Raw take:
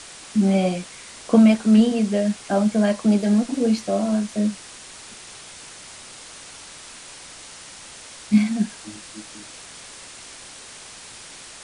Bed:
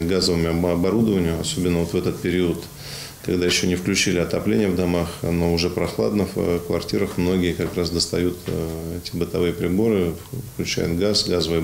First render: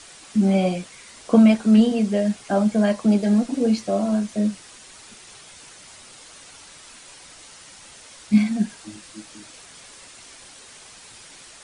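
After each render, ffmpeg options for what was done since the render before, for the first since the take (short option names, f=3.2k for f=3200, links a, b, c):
-af "afftdn=nr=6:nf=-42"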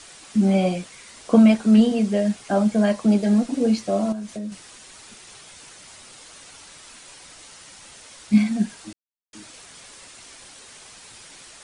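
-filter_complex "[0:a]asettb=1/sr,asplit=3[a][b][c];[a]atrim=end=4.124[d];[b]atrim=start=4.12:end=4.52,asetpts=PTS-STARTPTS,afade=t=in:d=0.004:c=qsin,afade=t=out:st=0.396:d=0.004:c=qsin,acompressor=threshold=-29dB:ratio=5:attack=3.2:release=140:knee=1:detection=peak[e];[c]atrim=start=4.516[f];[d][e]acrossfade=d=0.004:c1=hsin:c2=qsin[g];[g][f]acrossfade=d=0.004:c1=qsin:c2=hsin,asplit=3[h][i][j];[h]atrim=end=8.93,asetpts=PTS-STARTPTS,afade=t=out:st=8.926:d=0.004:c=hsin[k];[i]atrim=start=8.93:end=9.33,asetpts=PTS-STARTPTS,volume=0[l];[j]atrim=start=9.33,asetpts=PTS-STARTPTS,afade=t=in:d=0.004:c=hsin[m];[k][l][m]concat=n=3:v=0:a=1"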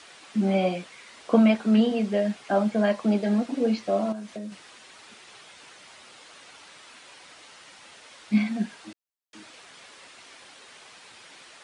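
-filter_complex "[0:a]acrossover=split=4300[a][b];[b]acompressor=threshold=-58dB:ratio=4:attack=1:release=60[c];[a][c]amix=inputs=2:normalize=0,highpass=f=350:p=1"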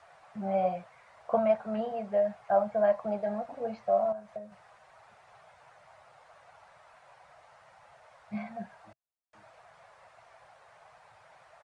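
-af "firequalizer=gain_entry='entry(130,0);entry(260,-25);entry(650,3);entry(960,-3);entry(3100,-21)':delay=0.05:min_phase=1"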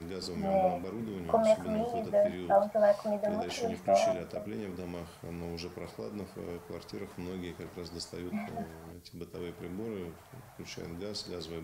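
-filter_complex "[1:a]volume=-20dB[a];[0:a][a]amix=inputs=2:normalize=0"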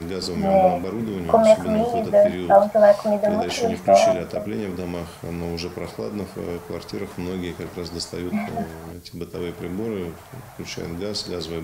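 -af "volume=11.5dB,alimiter=limit=-3dB:level=0:latency=1"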